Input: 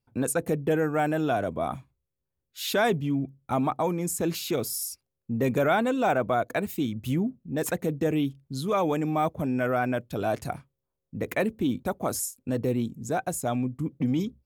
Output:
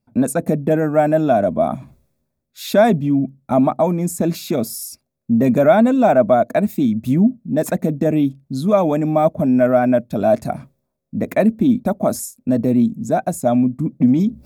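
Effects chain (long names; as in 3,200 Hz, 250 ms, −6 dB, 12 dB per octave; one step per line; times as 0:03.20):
notch filter 3,000 Hz, Q 6.2
reversed playback
upward compression, threshold −38 dBFS
reversed playback
hollow resonant body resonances 220/620 Hz, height 13 dB, ringing for 30 ms
level +2.5 dB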